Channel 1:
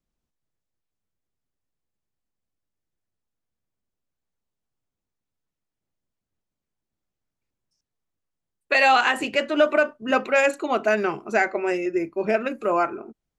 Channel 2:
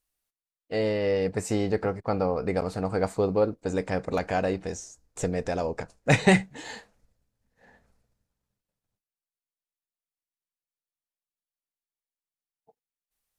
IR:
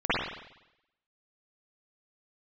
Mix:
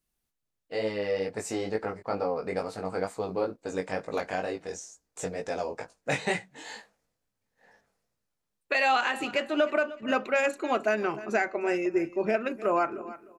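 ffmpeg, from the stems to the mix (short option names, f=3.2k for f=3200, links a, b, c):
-filter_complex "[0:a]volume=-2.5dB,asplit=2[a][b];[b]volume=-18dB[c];[1:a]highpass=f=390:p=1,flanger=delay=18:depth=4:speed=2.2,volume=1.5dB[d];[c]aecho=0:1:304|608|912:1|0.21|0.0441[e];[a][d][e]amix=inputs=3:normalize=0,alimiter=limit=-15dB:level=0:latency=1:release=378"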